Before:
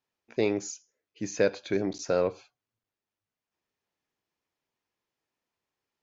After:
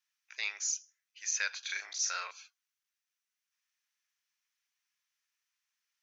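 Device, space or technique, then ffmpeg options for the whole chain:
headphones lying on a table: -filter_complex "[0:a]highpass=f=1.4k:w=0.5412,highpass=f=1.4k:w=1.3066,equalizer=f=5.9k:t=o:w=0.21:g=8,asettb=1/sr,asplit=3[a][b][c];[a]atrim=end=1.594[d];[b]atrim=start=1.59:end=2.31,asetpts=PTS-STARTPTS,afade=t=in:d=0.004:c=qsin,afade=t=out:st=0.716:d=0.004:c=qsin,asplit=2[e][f];[f]adelay=38,volume=-3dB[g];[e][g]amix=inputs=2:normalize=0,atrim=end_sample=31752[h];[c]atrim=start=2.306[i];[d][h]acrossfade=d=0.004:c1=hsin:c2=qsin[j];[j][i]acrossfade=d=0.004:c1=qsin:c2=hsin,volume=2.5dB"

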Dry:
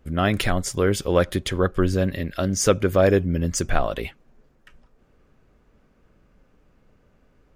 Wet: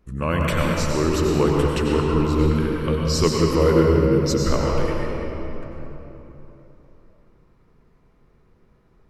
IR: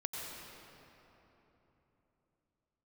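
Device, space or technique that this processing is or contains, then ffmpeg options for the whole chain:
slowed and reverbed: -filter_complex "[0:a]asetrate=36603,aresample=44100[a];[1:a]atrim=start_sample=2205[b];[a][b]afir=irnorm=-1:irlink=0"

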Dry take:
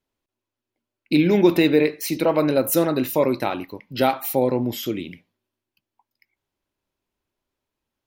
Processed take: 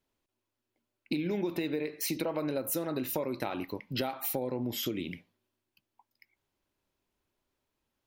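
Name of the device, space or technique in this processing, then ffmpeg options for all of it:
serial compression, peaks first: -af "acompressor=threshold=-24dB:ratio=6,acompressor=threshold=-33dB:ratio=2"

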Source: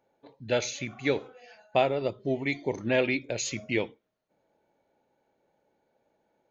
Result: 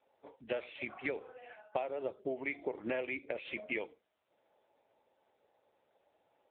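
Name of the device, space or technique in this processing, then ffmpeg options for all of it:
voicemail: -af "highpass=410,lowpass=2.7k,acompressor=threshold=-35dB:ratio=12,volume=3dB" -ar 8000 -c:a libopencore_amrnb -b:a 6700

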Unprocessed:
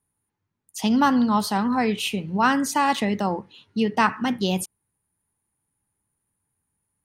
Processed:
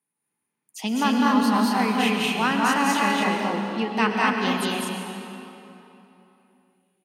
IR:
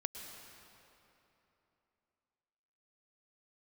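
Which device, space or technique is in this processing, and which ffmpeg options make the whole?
stadium PA: -filter_complex "[0:a]highpass=f=170:w=0.5412,highpass=f=170:w=1.3066,equalizer=f=2.4k:t=o:w=0.7:g=7,aecho=1:1:201.2|236.2:0.891|0.794[a];[1:a]atrim=start_sample=2205[b];[a][b]afir=irnorm=-1:irlink=0,volume=-3.5dB"

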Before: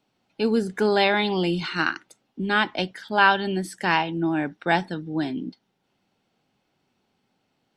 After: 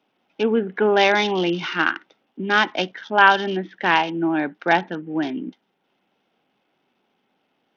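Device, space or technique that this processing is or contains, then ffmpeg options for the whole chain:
Bluetooth headset: -af "highpass=240,aresample=8000,aresample=44100,volume=4dB" -ar 48000 -c:a sbc -b:a 64k

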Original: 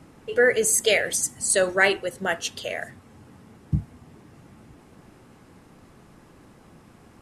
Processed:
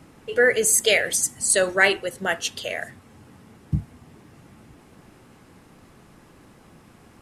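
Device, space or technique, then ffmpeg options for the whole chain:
presence and air boost: -af "equalizer=f=2.8k:t=o:w=2:g=2.5,highshelf=f=11k:g=6"

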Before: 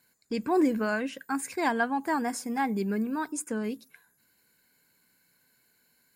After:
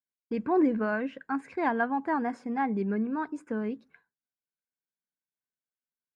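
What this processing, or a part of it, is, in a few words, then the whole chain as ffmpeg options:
hearing-loss simulation: -af "lowpass=1.9k,agate=range=-33dB:threshold=-55dB:ratio=3:detection=peak"

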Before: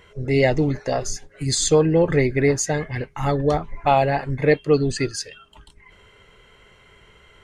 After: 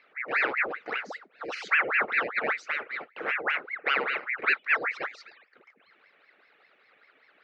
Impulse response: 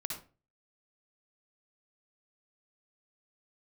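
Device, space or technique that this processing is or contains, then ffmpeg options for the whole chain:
voice changer toy: -af "aeval=exprs='val(0)*sin(2*PI*1200*n/s+1200*0.85/5.1*sin(2*PI*5.1*n/s))':c=same,highpass=450,equalizer=f=460:t=q:w=4:g=5,equalizer=f=680:t=q:w=4:g=-3,equalizer=f=970:t=q:w=4:g=-9,equalizer=f=1.4k:t=q:w=4:g=4,equalizer=f=2.1k:t=q:w=4:g=4,equalizer=f=3.3k:t=q:w=4:g=-7,lowpass=f=3.7k:w=0.5412,lowpass=f=3.7k:w=1.3066,volume=-6.5dB"

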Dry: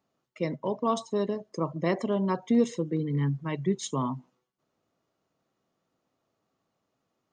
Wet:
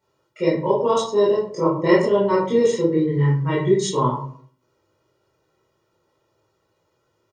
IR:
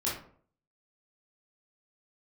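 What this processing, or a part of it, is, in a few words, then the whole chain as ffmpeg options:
microphone above a desk: -filter_complex "[0:a]aecho=1:1:2.1:0.76[a];[1:a]atrim=start_sample=2205[b];[a][b]afir=irnorm=-1:irlink=0,volume=2.5dB"

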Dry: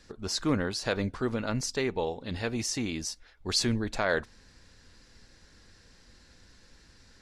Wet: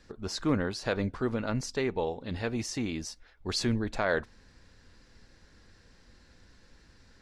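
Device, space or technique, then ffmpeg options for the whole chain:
behind a face mask: -af "highshelf=f=3.5k:g=-7.5"

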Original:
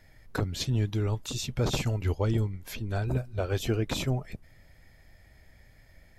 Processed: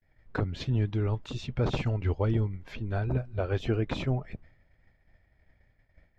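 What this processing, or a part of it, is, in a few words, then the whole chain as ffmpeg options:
hearing-loss simulation: -af "lowpass=2.7k,agate=range=-33dB:threshold=-47dB:ratio=3:detection=peak"

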